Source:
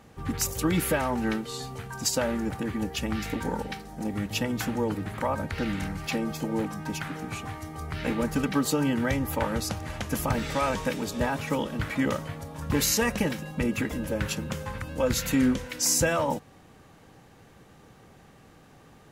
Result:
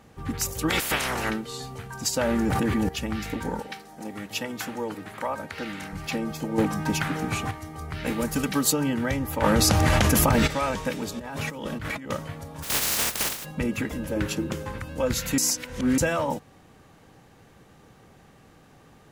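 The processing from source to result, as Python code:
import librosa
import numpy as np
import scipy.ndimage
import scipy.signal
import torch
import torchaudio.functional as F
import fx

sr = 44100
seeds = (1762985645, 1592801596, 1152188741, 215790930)

y = fx.spec_clip(x, sr, under_db=26, at=(0.68, 1.29), fade=0.02)
y = fx.env_flatten(y, sr, amount_pct=100, at=(2.18, 2.89))
y = fx.highpass(y, sr, hz=410.0, slope=6, at=(3.6, 5.93))
y = fx.high_shelf(y, sr, hz=fx.line((8.05, 6100.0), (8.71, 4000.0)), db=11.0, at=(8.05, 8.71), fade=0.02)
y = fx.env_flatten(y, sr, amount_pct=100, at=(9.42, 10.46), fade=0.02)
y = fx.over_compress(y, sr, threshold_db=-34.0, ratio=-1.0, at=(11.19, 12.1))
y = fx.spec_flatten(y, sr, power=0.11, at=(12.62, 13.44), fade=0.02)
y = fx.peak_eq(y, sr, hz=340.0, db=14.0, octaves=0.47, at=(14.16, 14.8))
y = fx.edit(y, sr, fx.clip_gain(start_s=6.58, length_s=0.93, db=7.0),
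    fx.reverse_span(start_s=15.38, length_s=0.6), tone=tone)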